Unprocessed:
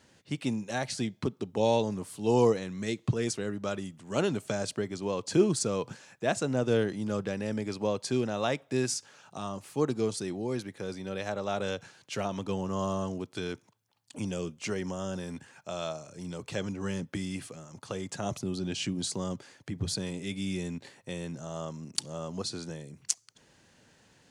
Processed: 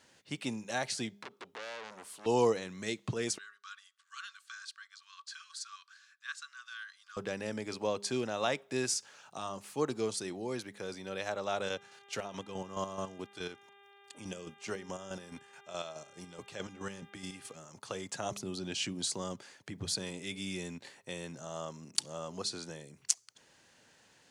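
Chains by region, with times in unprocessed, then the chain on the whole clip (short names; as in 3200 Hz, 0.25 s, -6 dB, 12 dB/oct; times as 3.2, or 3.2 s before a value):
1.22–2.26 tone controls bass -13 dB, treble -3 dB + compressor 10:1, threshold -31 dBFS + core saturation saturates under 2800 Hz
3.38–7.17 rippled Chebyshev high-pass 1100 Hz, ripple 9 dB + high shelf 2900 Hz -7.5 dB
11.68–17.54 chopper 4.7 Hz, depth 60%, duty 35% + buzz 400 Hz, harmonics 9, -58 dBFS
whole clip: low shelf 330 Hz -10.5 dB; de-hum 202.7 Hz, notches 2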